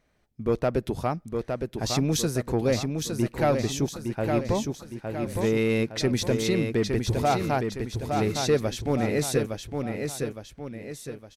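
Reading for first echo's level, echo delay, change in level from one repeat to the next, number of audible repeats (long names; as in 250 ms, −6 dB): −5.0 dB, 862 ms, −7.0 dB, 3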